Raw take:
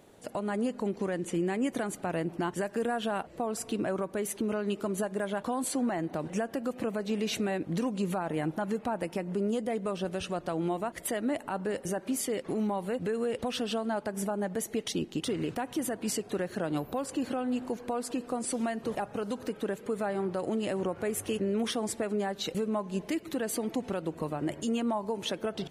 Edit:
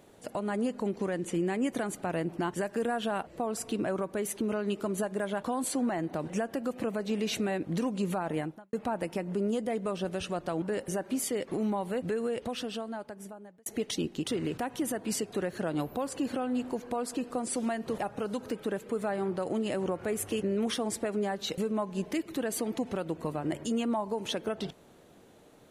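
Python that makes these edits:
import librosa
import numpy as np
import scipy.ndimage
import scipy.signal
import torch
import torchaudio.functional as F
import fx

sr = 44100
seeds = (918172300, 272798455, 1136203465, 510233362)

y = fx.edit(x, sr, fx.fade_out_span(start_s=8.38, length_s=0.35, curve='qua'),
    fx.cut(start_s=10.62, length_s=0.97),
    fx.fade_out_span(start_s=13.08, length_s=1.55), tone=tone)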